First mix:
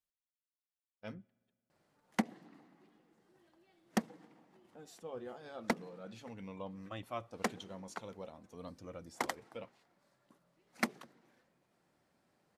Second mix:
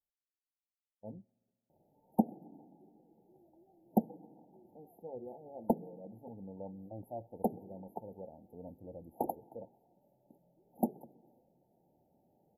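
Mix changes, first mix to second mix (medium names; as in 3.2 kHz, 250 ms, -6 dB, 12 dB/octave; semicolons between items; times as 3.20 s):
background +5.0 dB; master: add brick-wall FIR band-stop 920–11000 Hz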